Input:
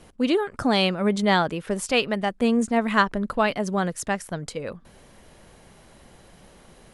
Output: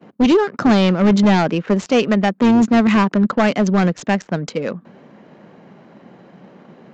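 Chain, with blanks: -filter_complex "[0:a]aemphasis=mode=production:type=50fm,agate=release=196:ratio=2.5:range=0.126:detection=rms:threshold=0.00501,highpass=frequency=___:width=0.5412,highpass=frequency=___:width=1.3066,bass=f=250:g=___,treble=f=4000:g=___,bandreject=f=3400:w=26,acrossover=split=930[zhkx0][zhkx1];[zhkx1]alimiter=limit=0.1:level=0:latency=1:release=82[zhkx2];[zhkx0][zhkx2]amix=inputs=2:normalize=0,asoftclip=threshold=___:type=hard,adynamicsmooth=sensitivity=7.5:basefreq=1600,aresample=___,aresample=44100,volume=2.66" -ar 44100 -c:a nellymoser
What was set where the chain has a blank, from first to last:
190, 190, 10, -5, 0.141, 16000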